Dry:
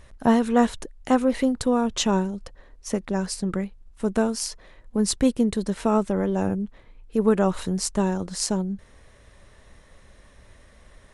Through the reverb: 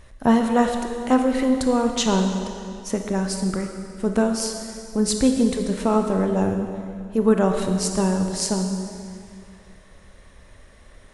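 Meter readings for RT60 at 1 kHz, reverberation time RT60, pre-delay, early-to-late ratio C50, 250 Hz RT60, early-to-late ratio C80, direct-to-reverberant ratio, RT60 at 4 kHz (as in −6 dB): 2.3 s, 2.3 s, 22 ms, 5.0 dB, 2.4 s, 6.0 dB, 4.0 dB, 2.1 s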